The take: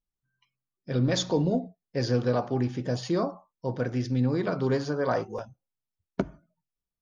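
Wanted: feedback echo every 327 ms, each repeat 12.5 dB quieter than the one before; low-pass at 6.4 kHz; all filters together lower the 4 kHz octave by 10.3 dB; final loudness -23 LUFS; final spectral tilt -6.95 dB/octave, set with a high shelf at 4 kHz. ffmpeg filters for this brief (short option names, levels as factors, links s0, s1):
-af "lowpass=6400,highshelf=f=4000:g=-8,equalizer=f=4000:t=o:g=-7,aecho=1:1:327|654|981:0.237|0.0569|0.0137,volume=2"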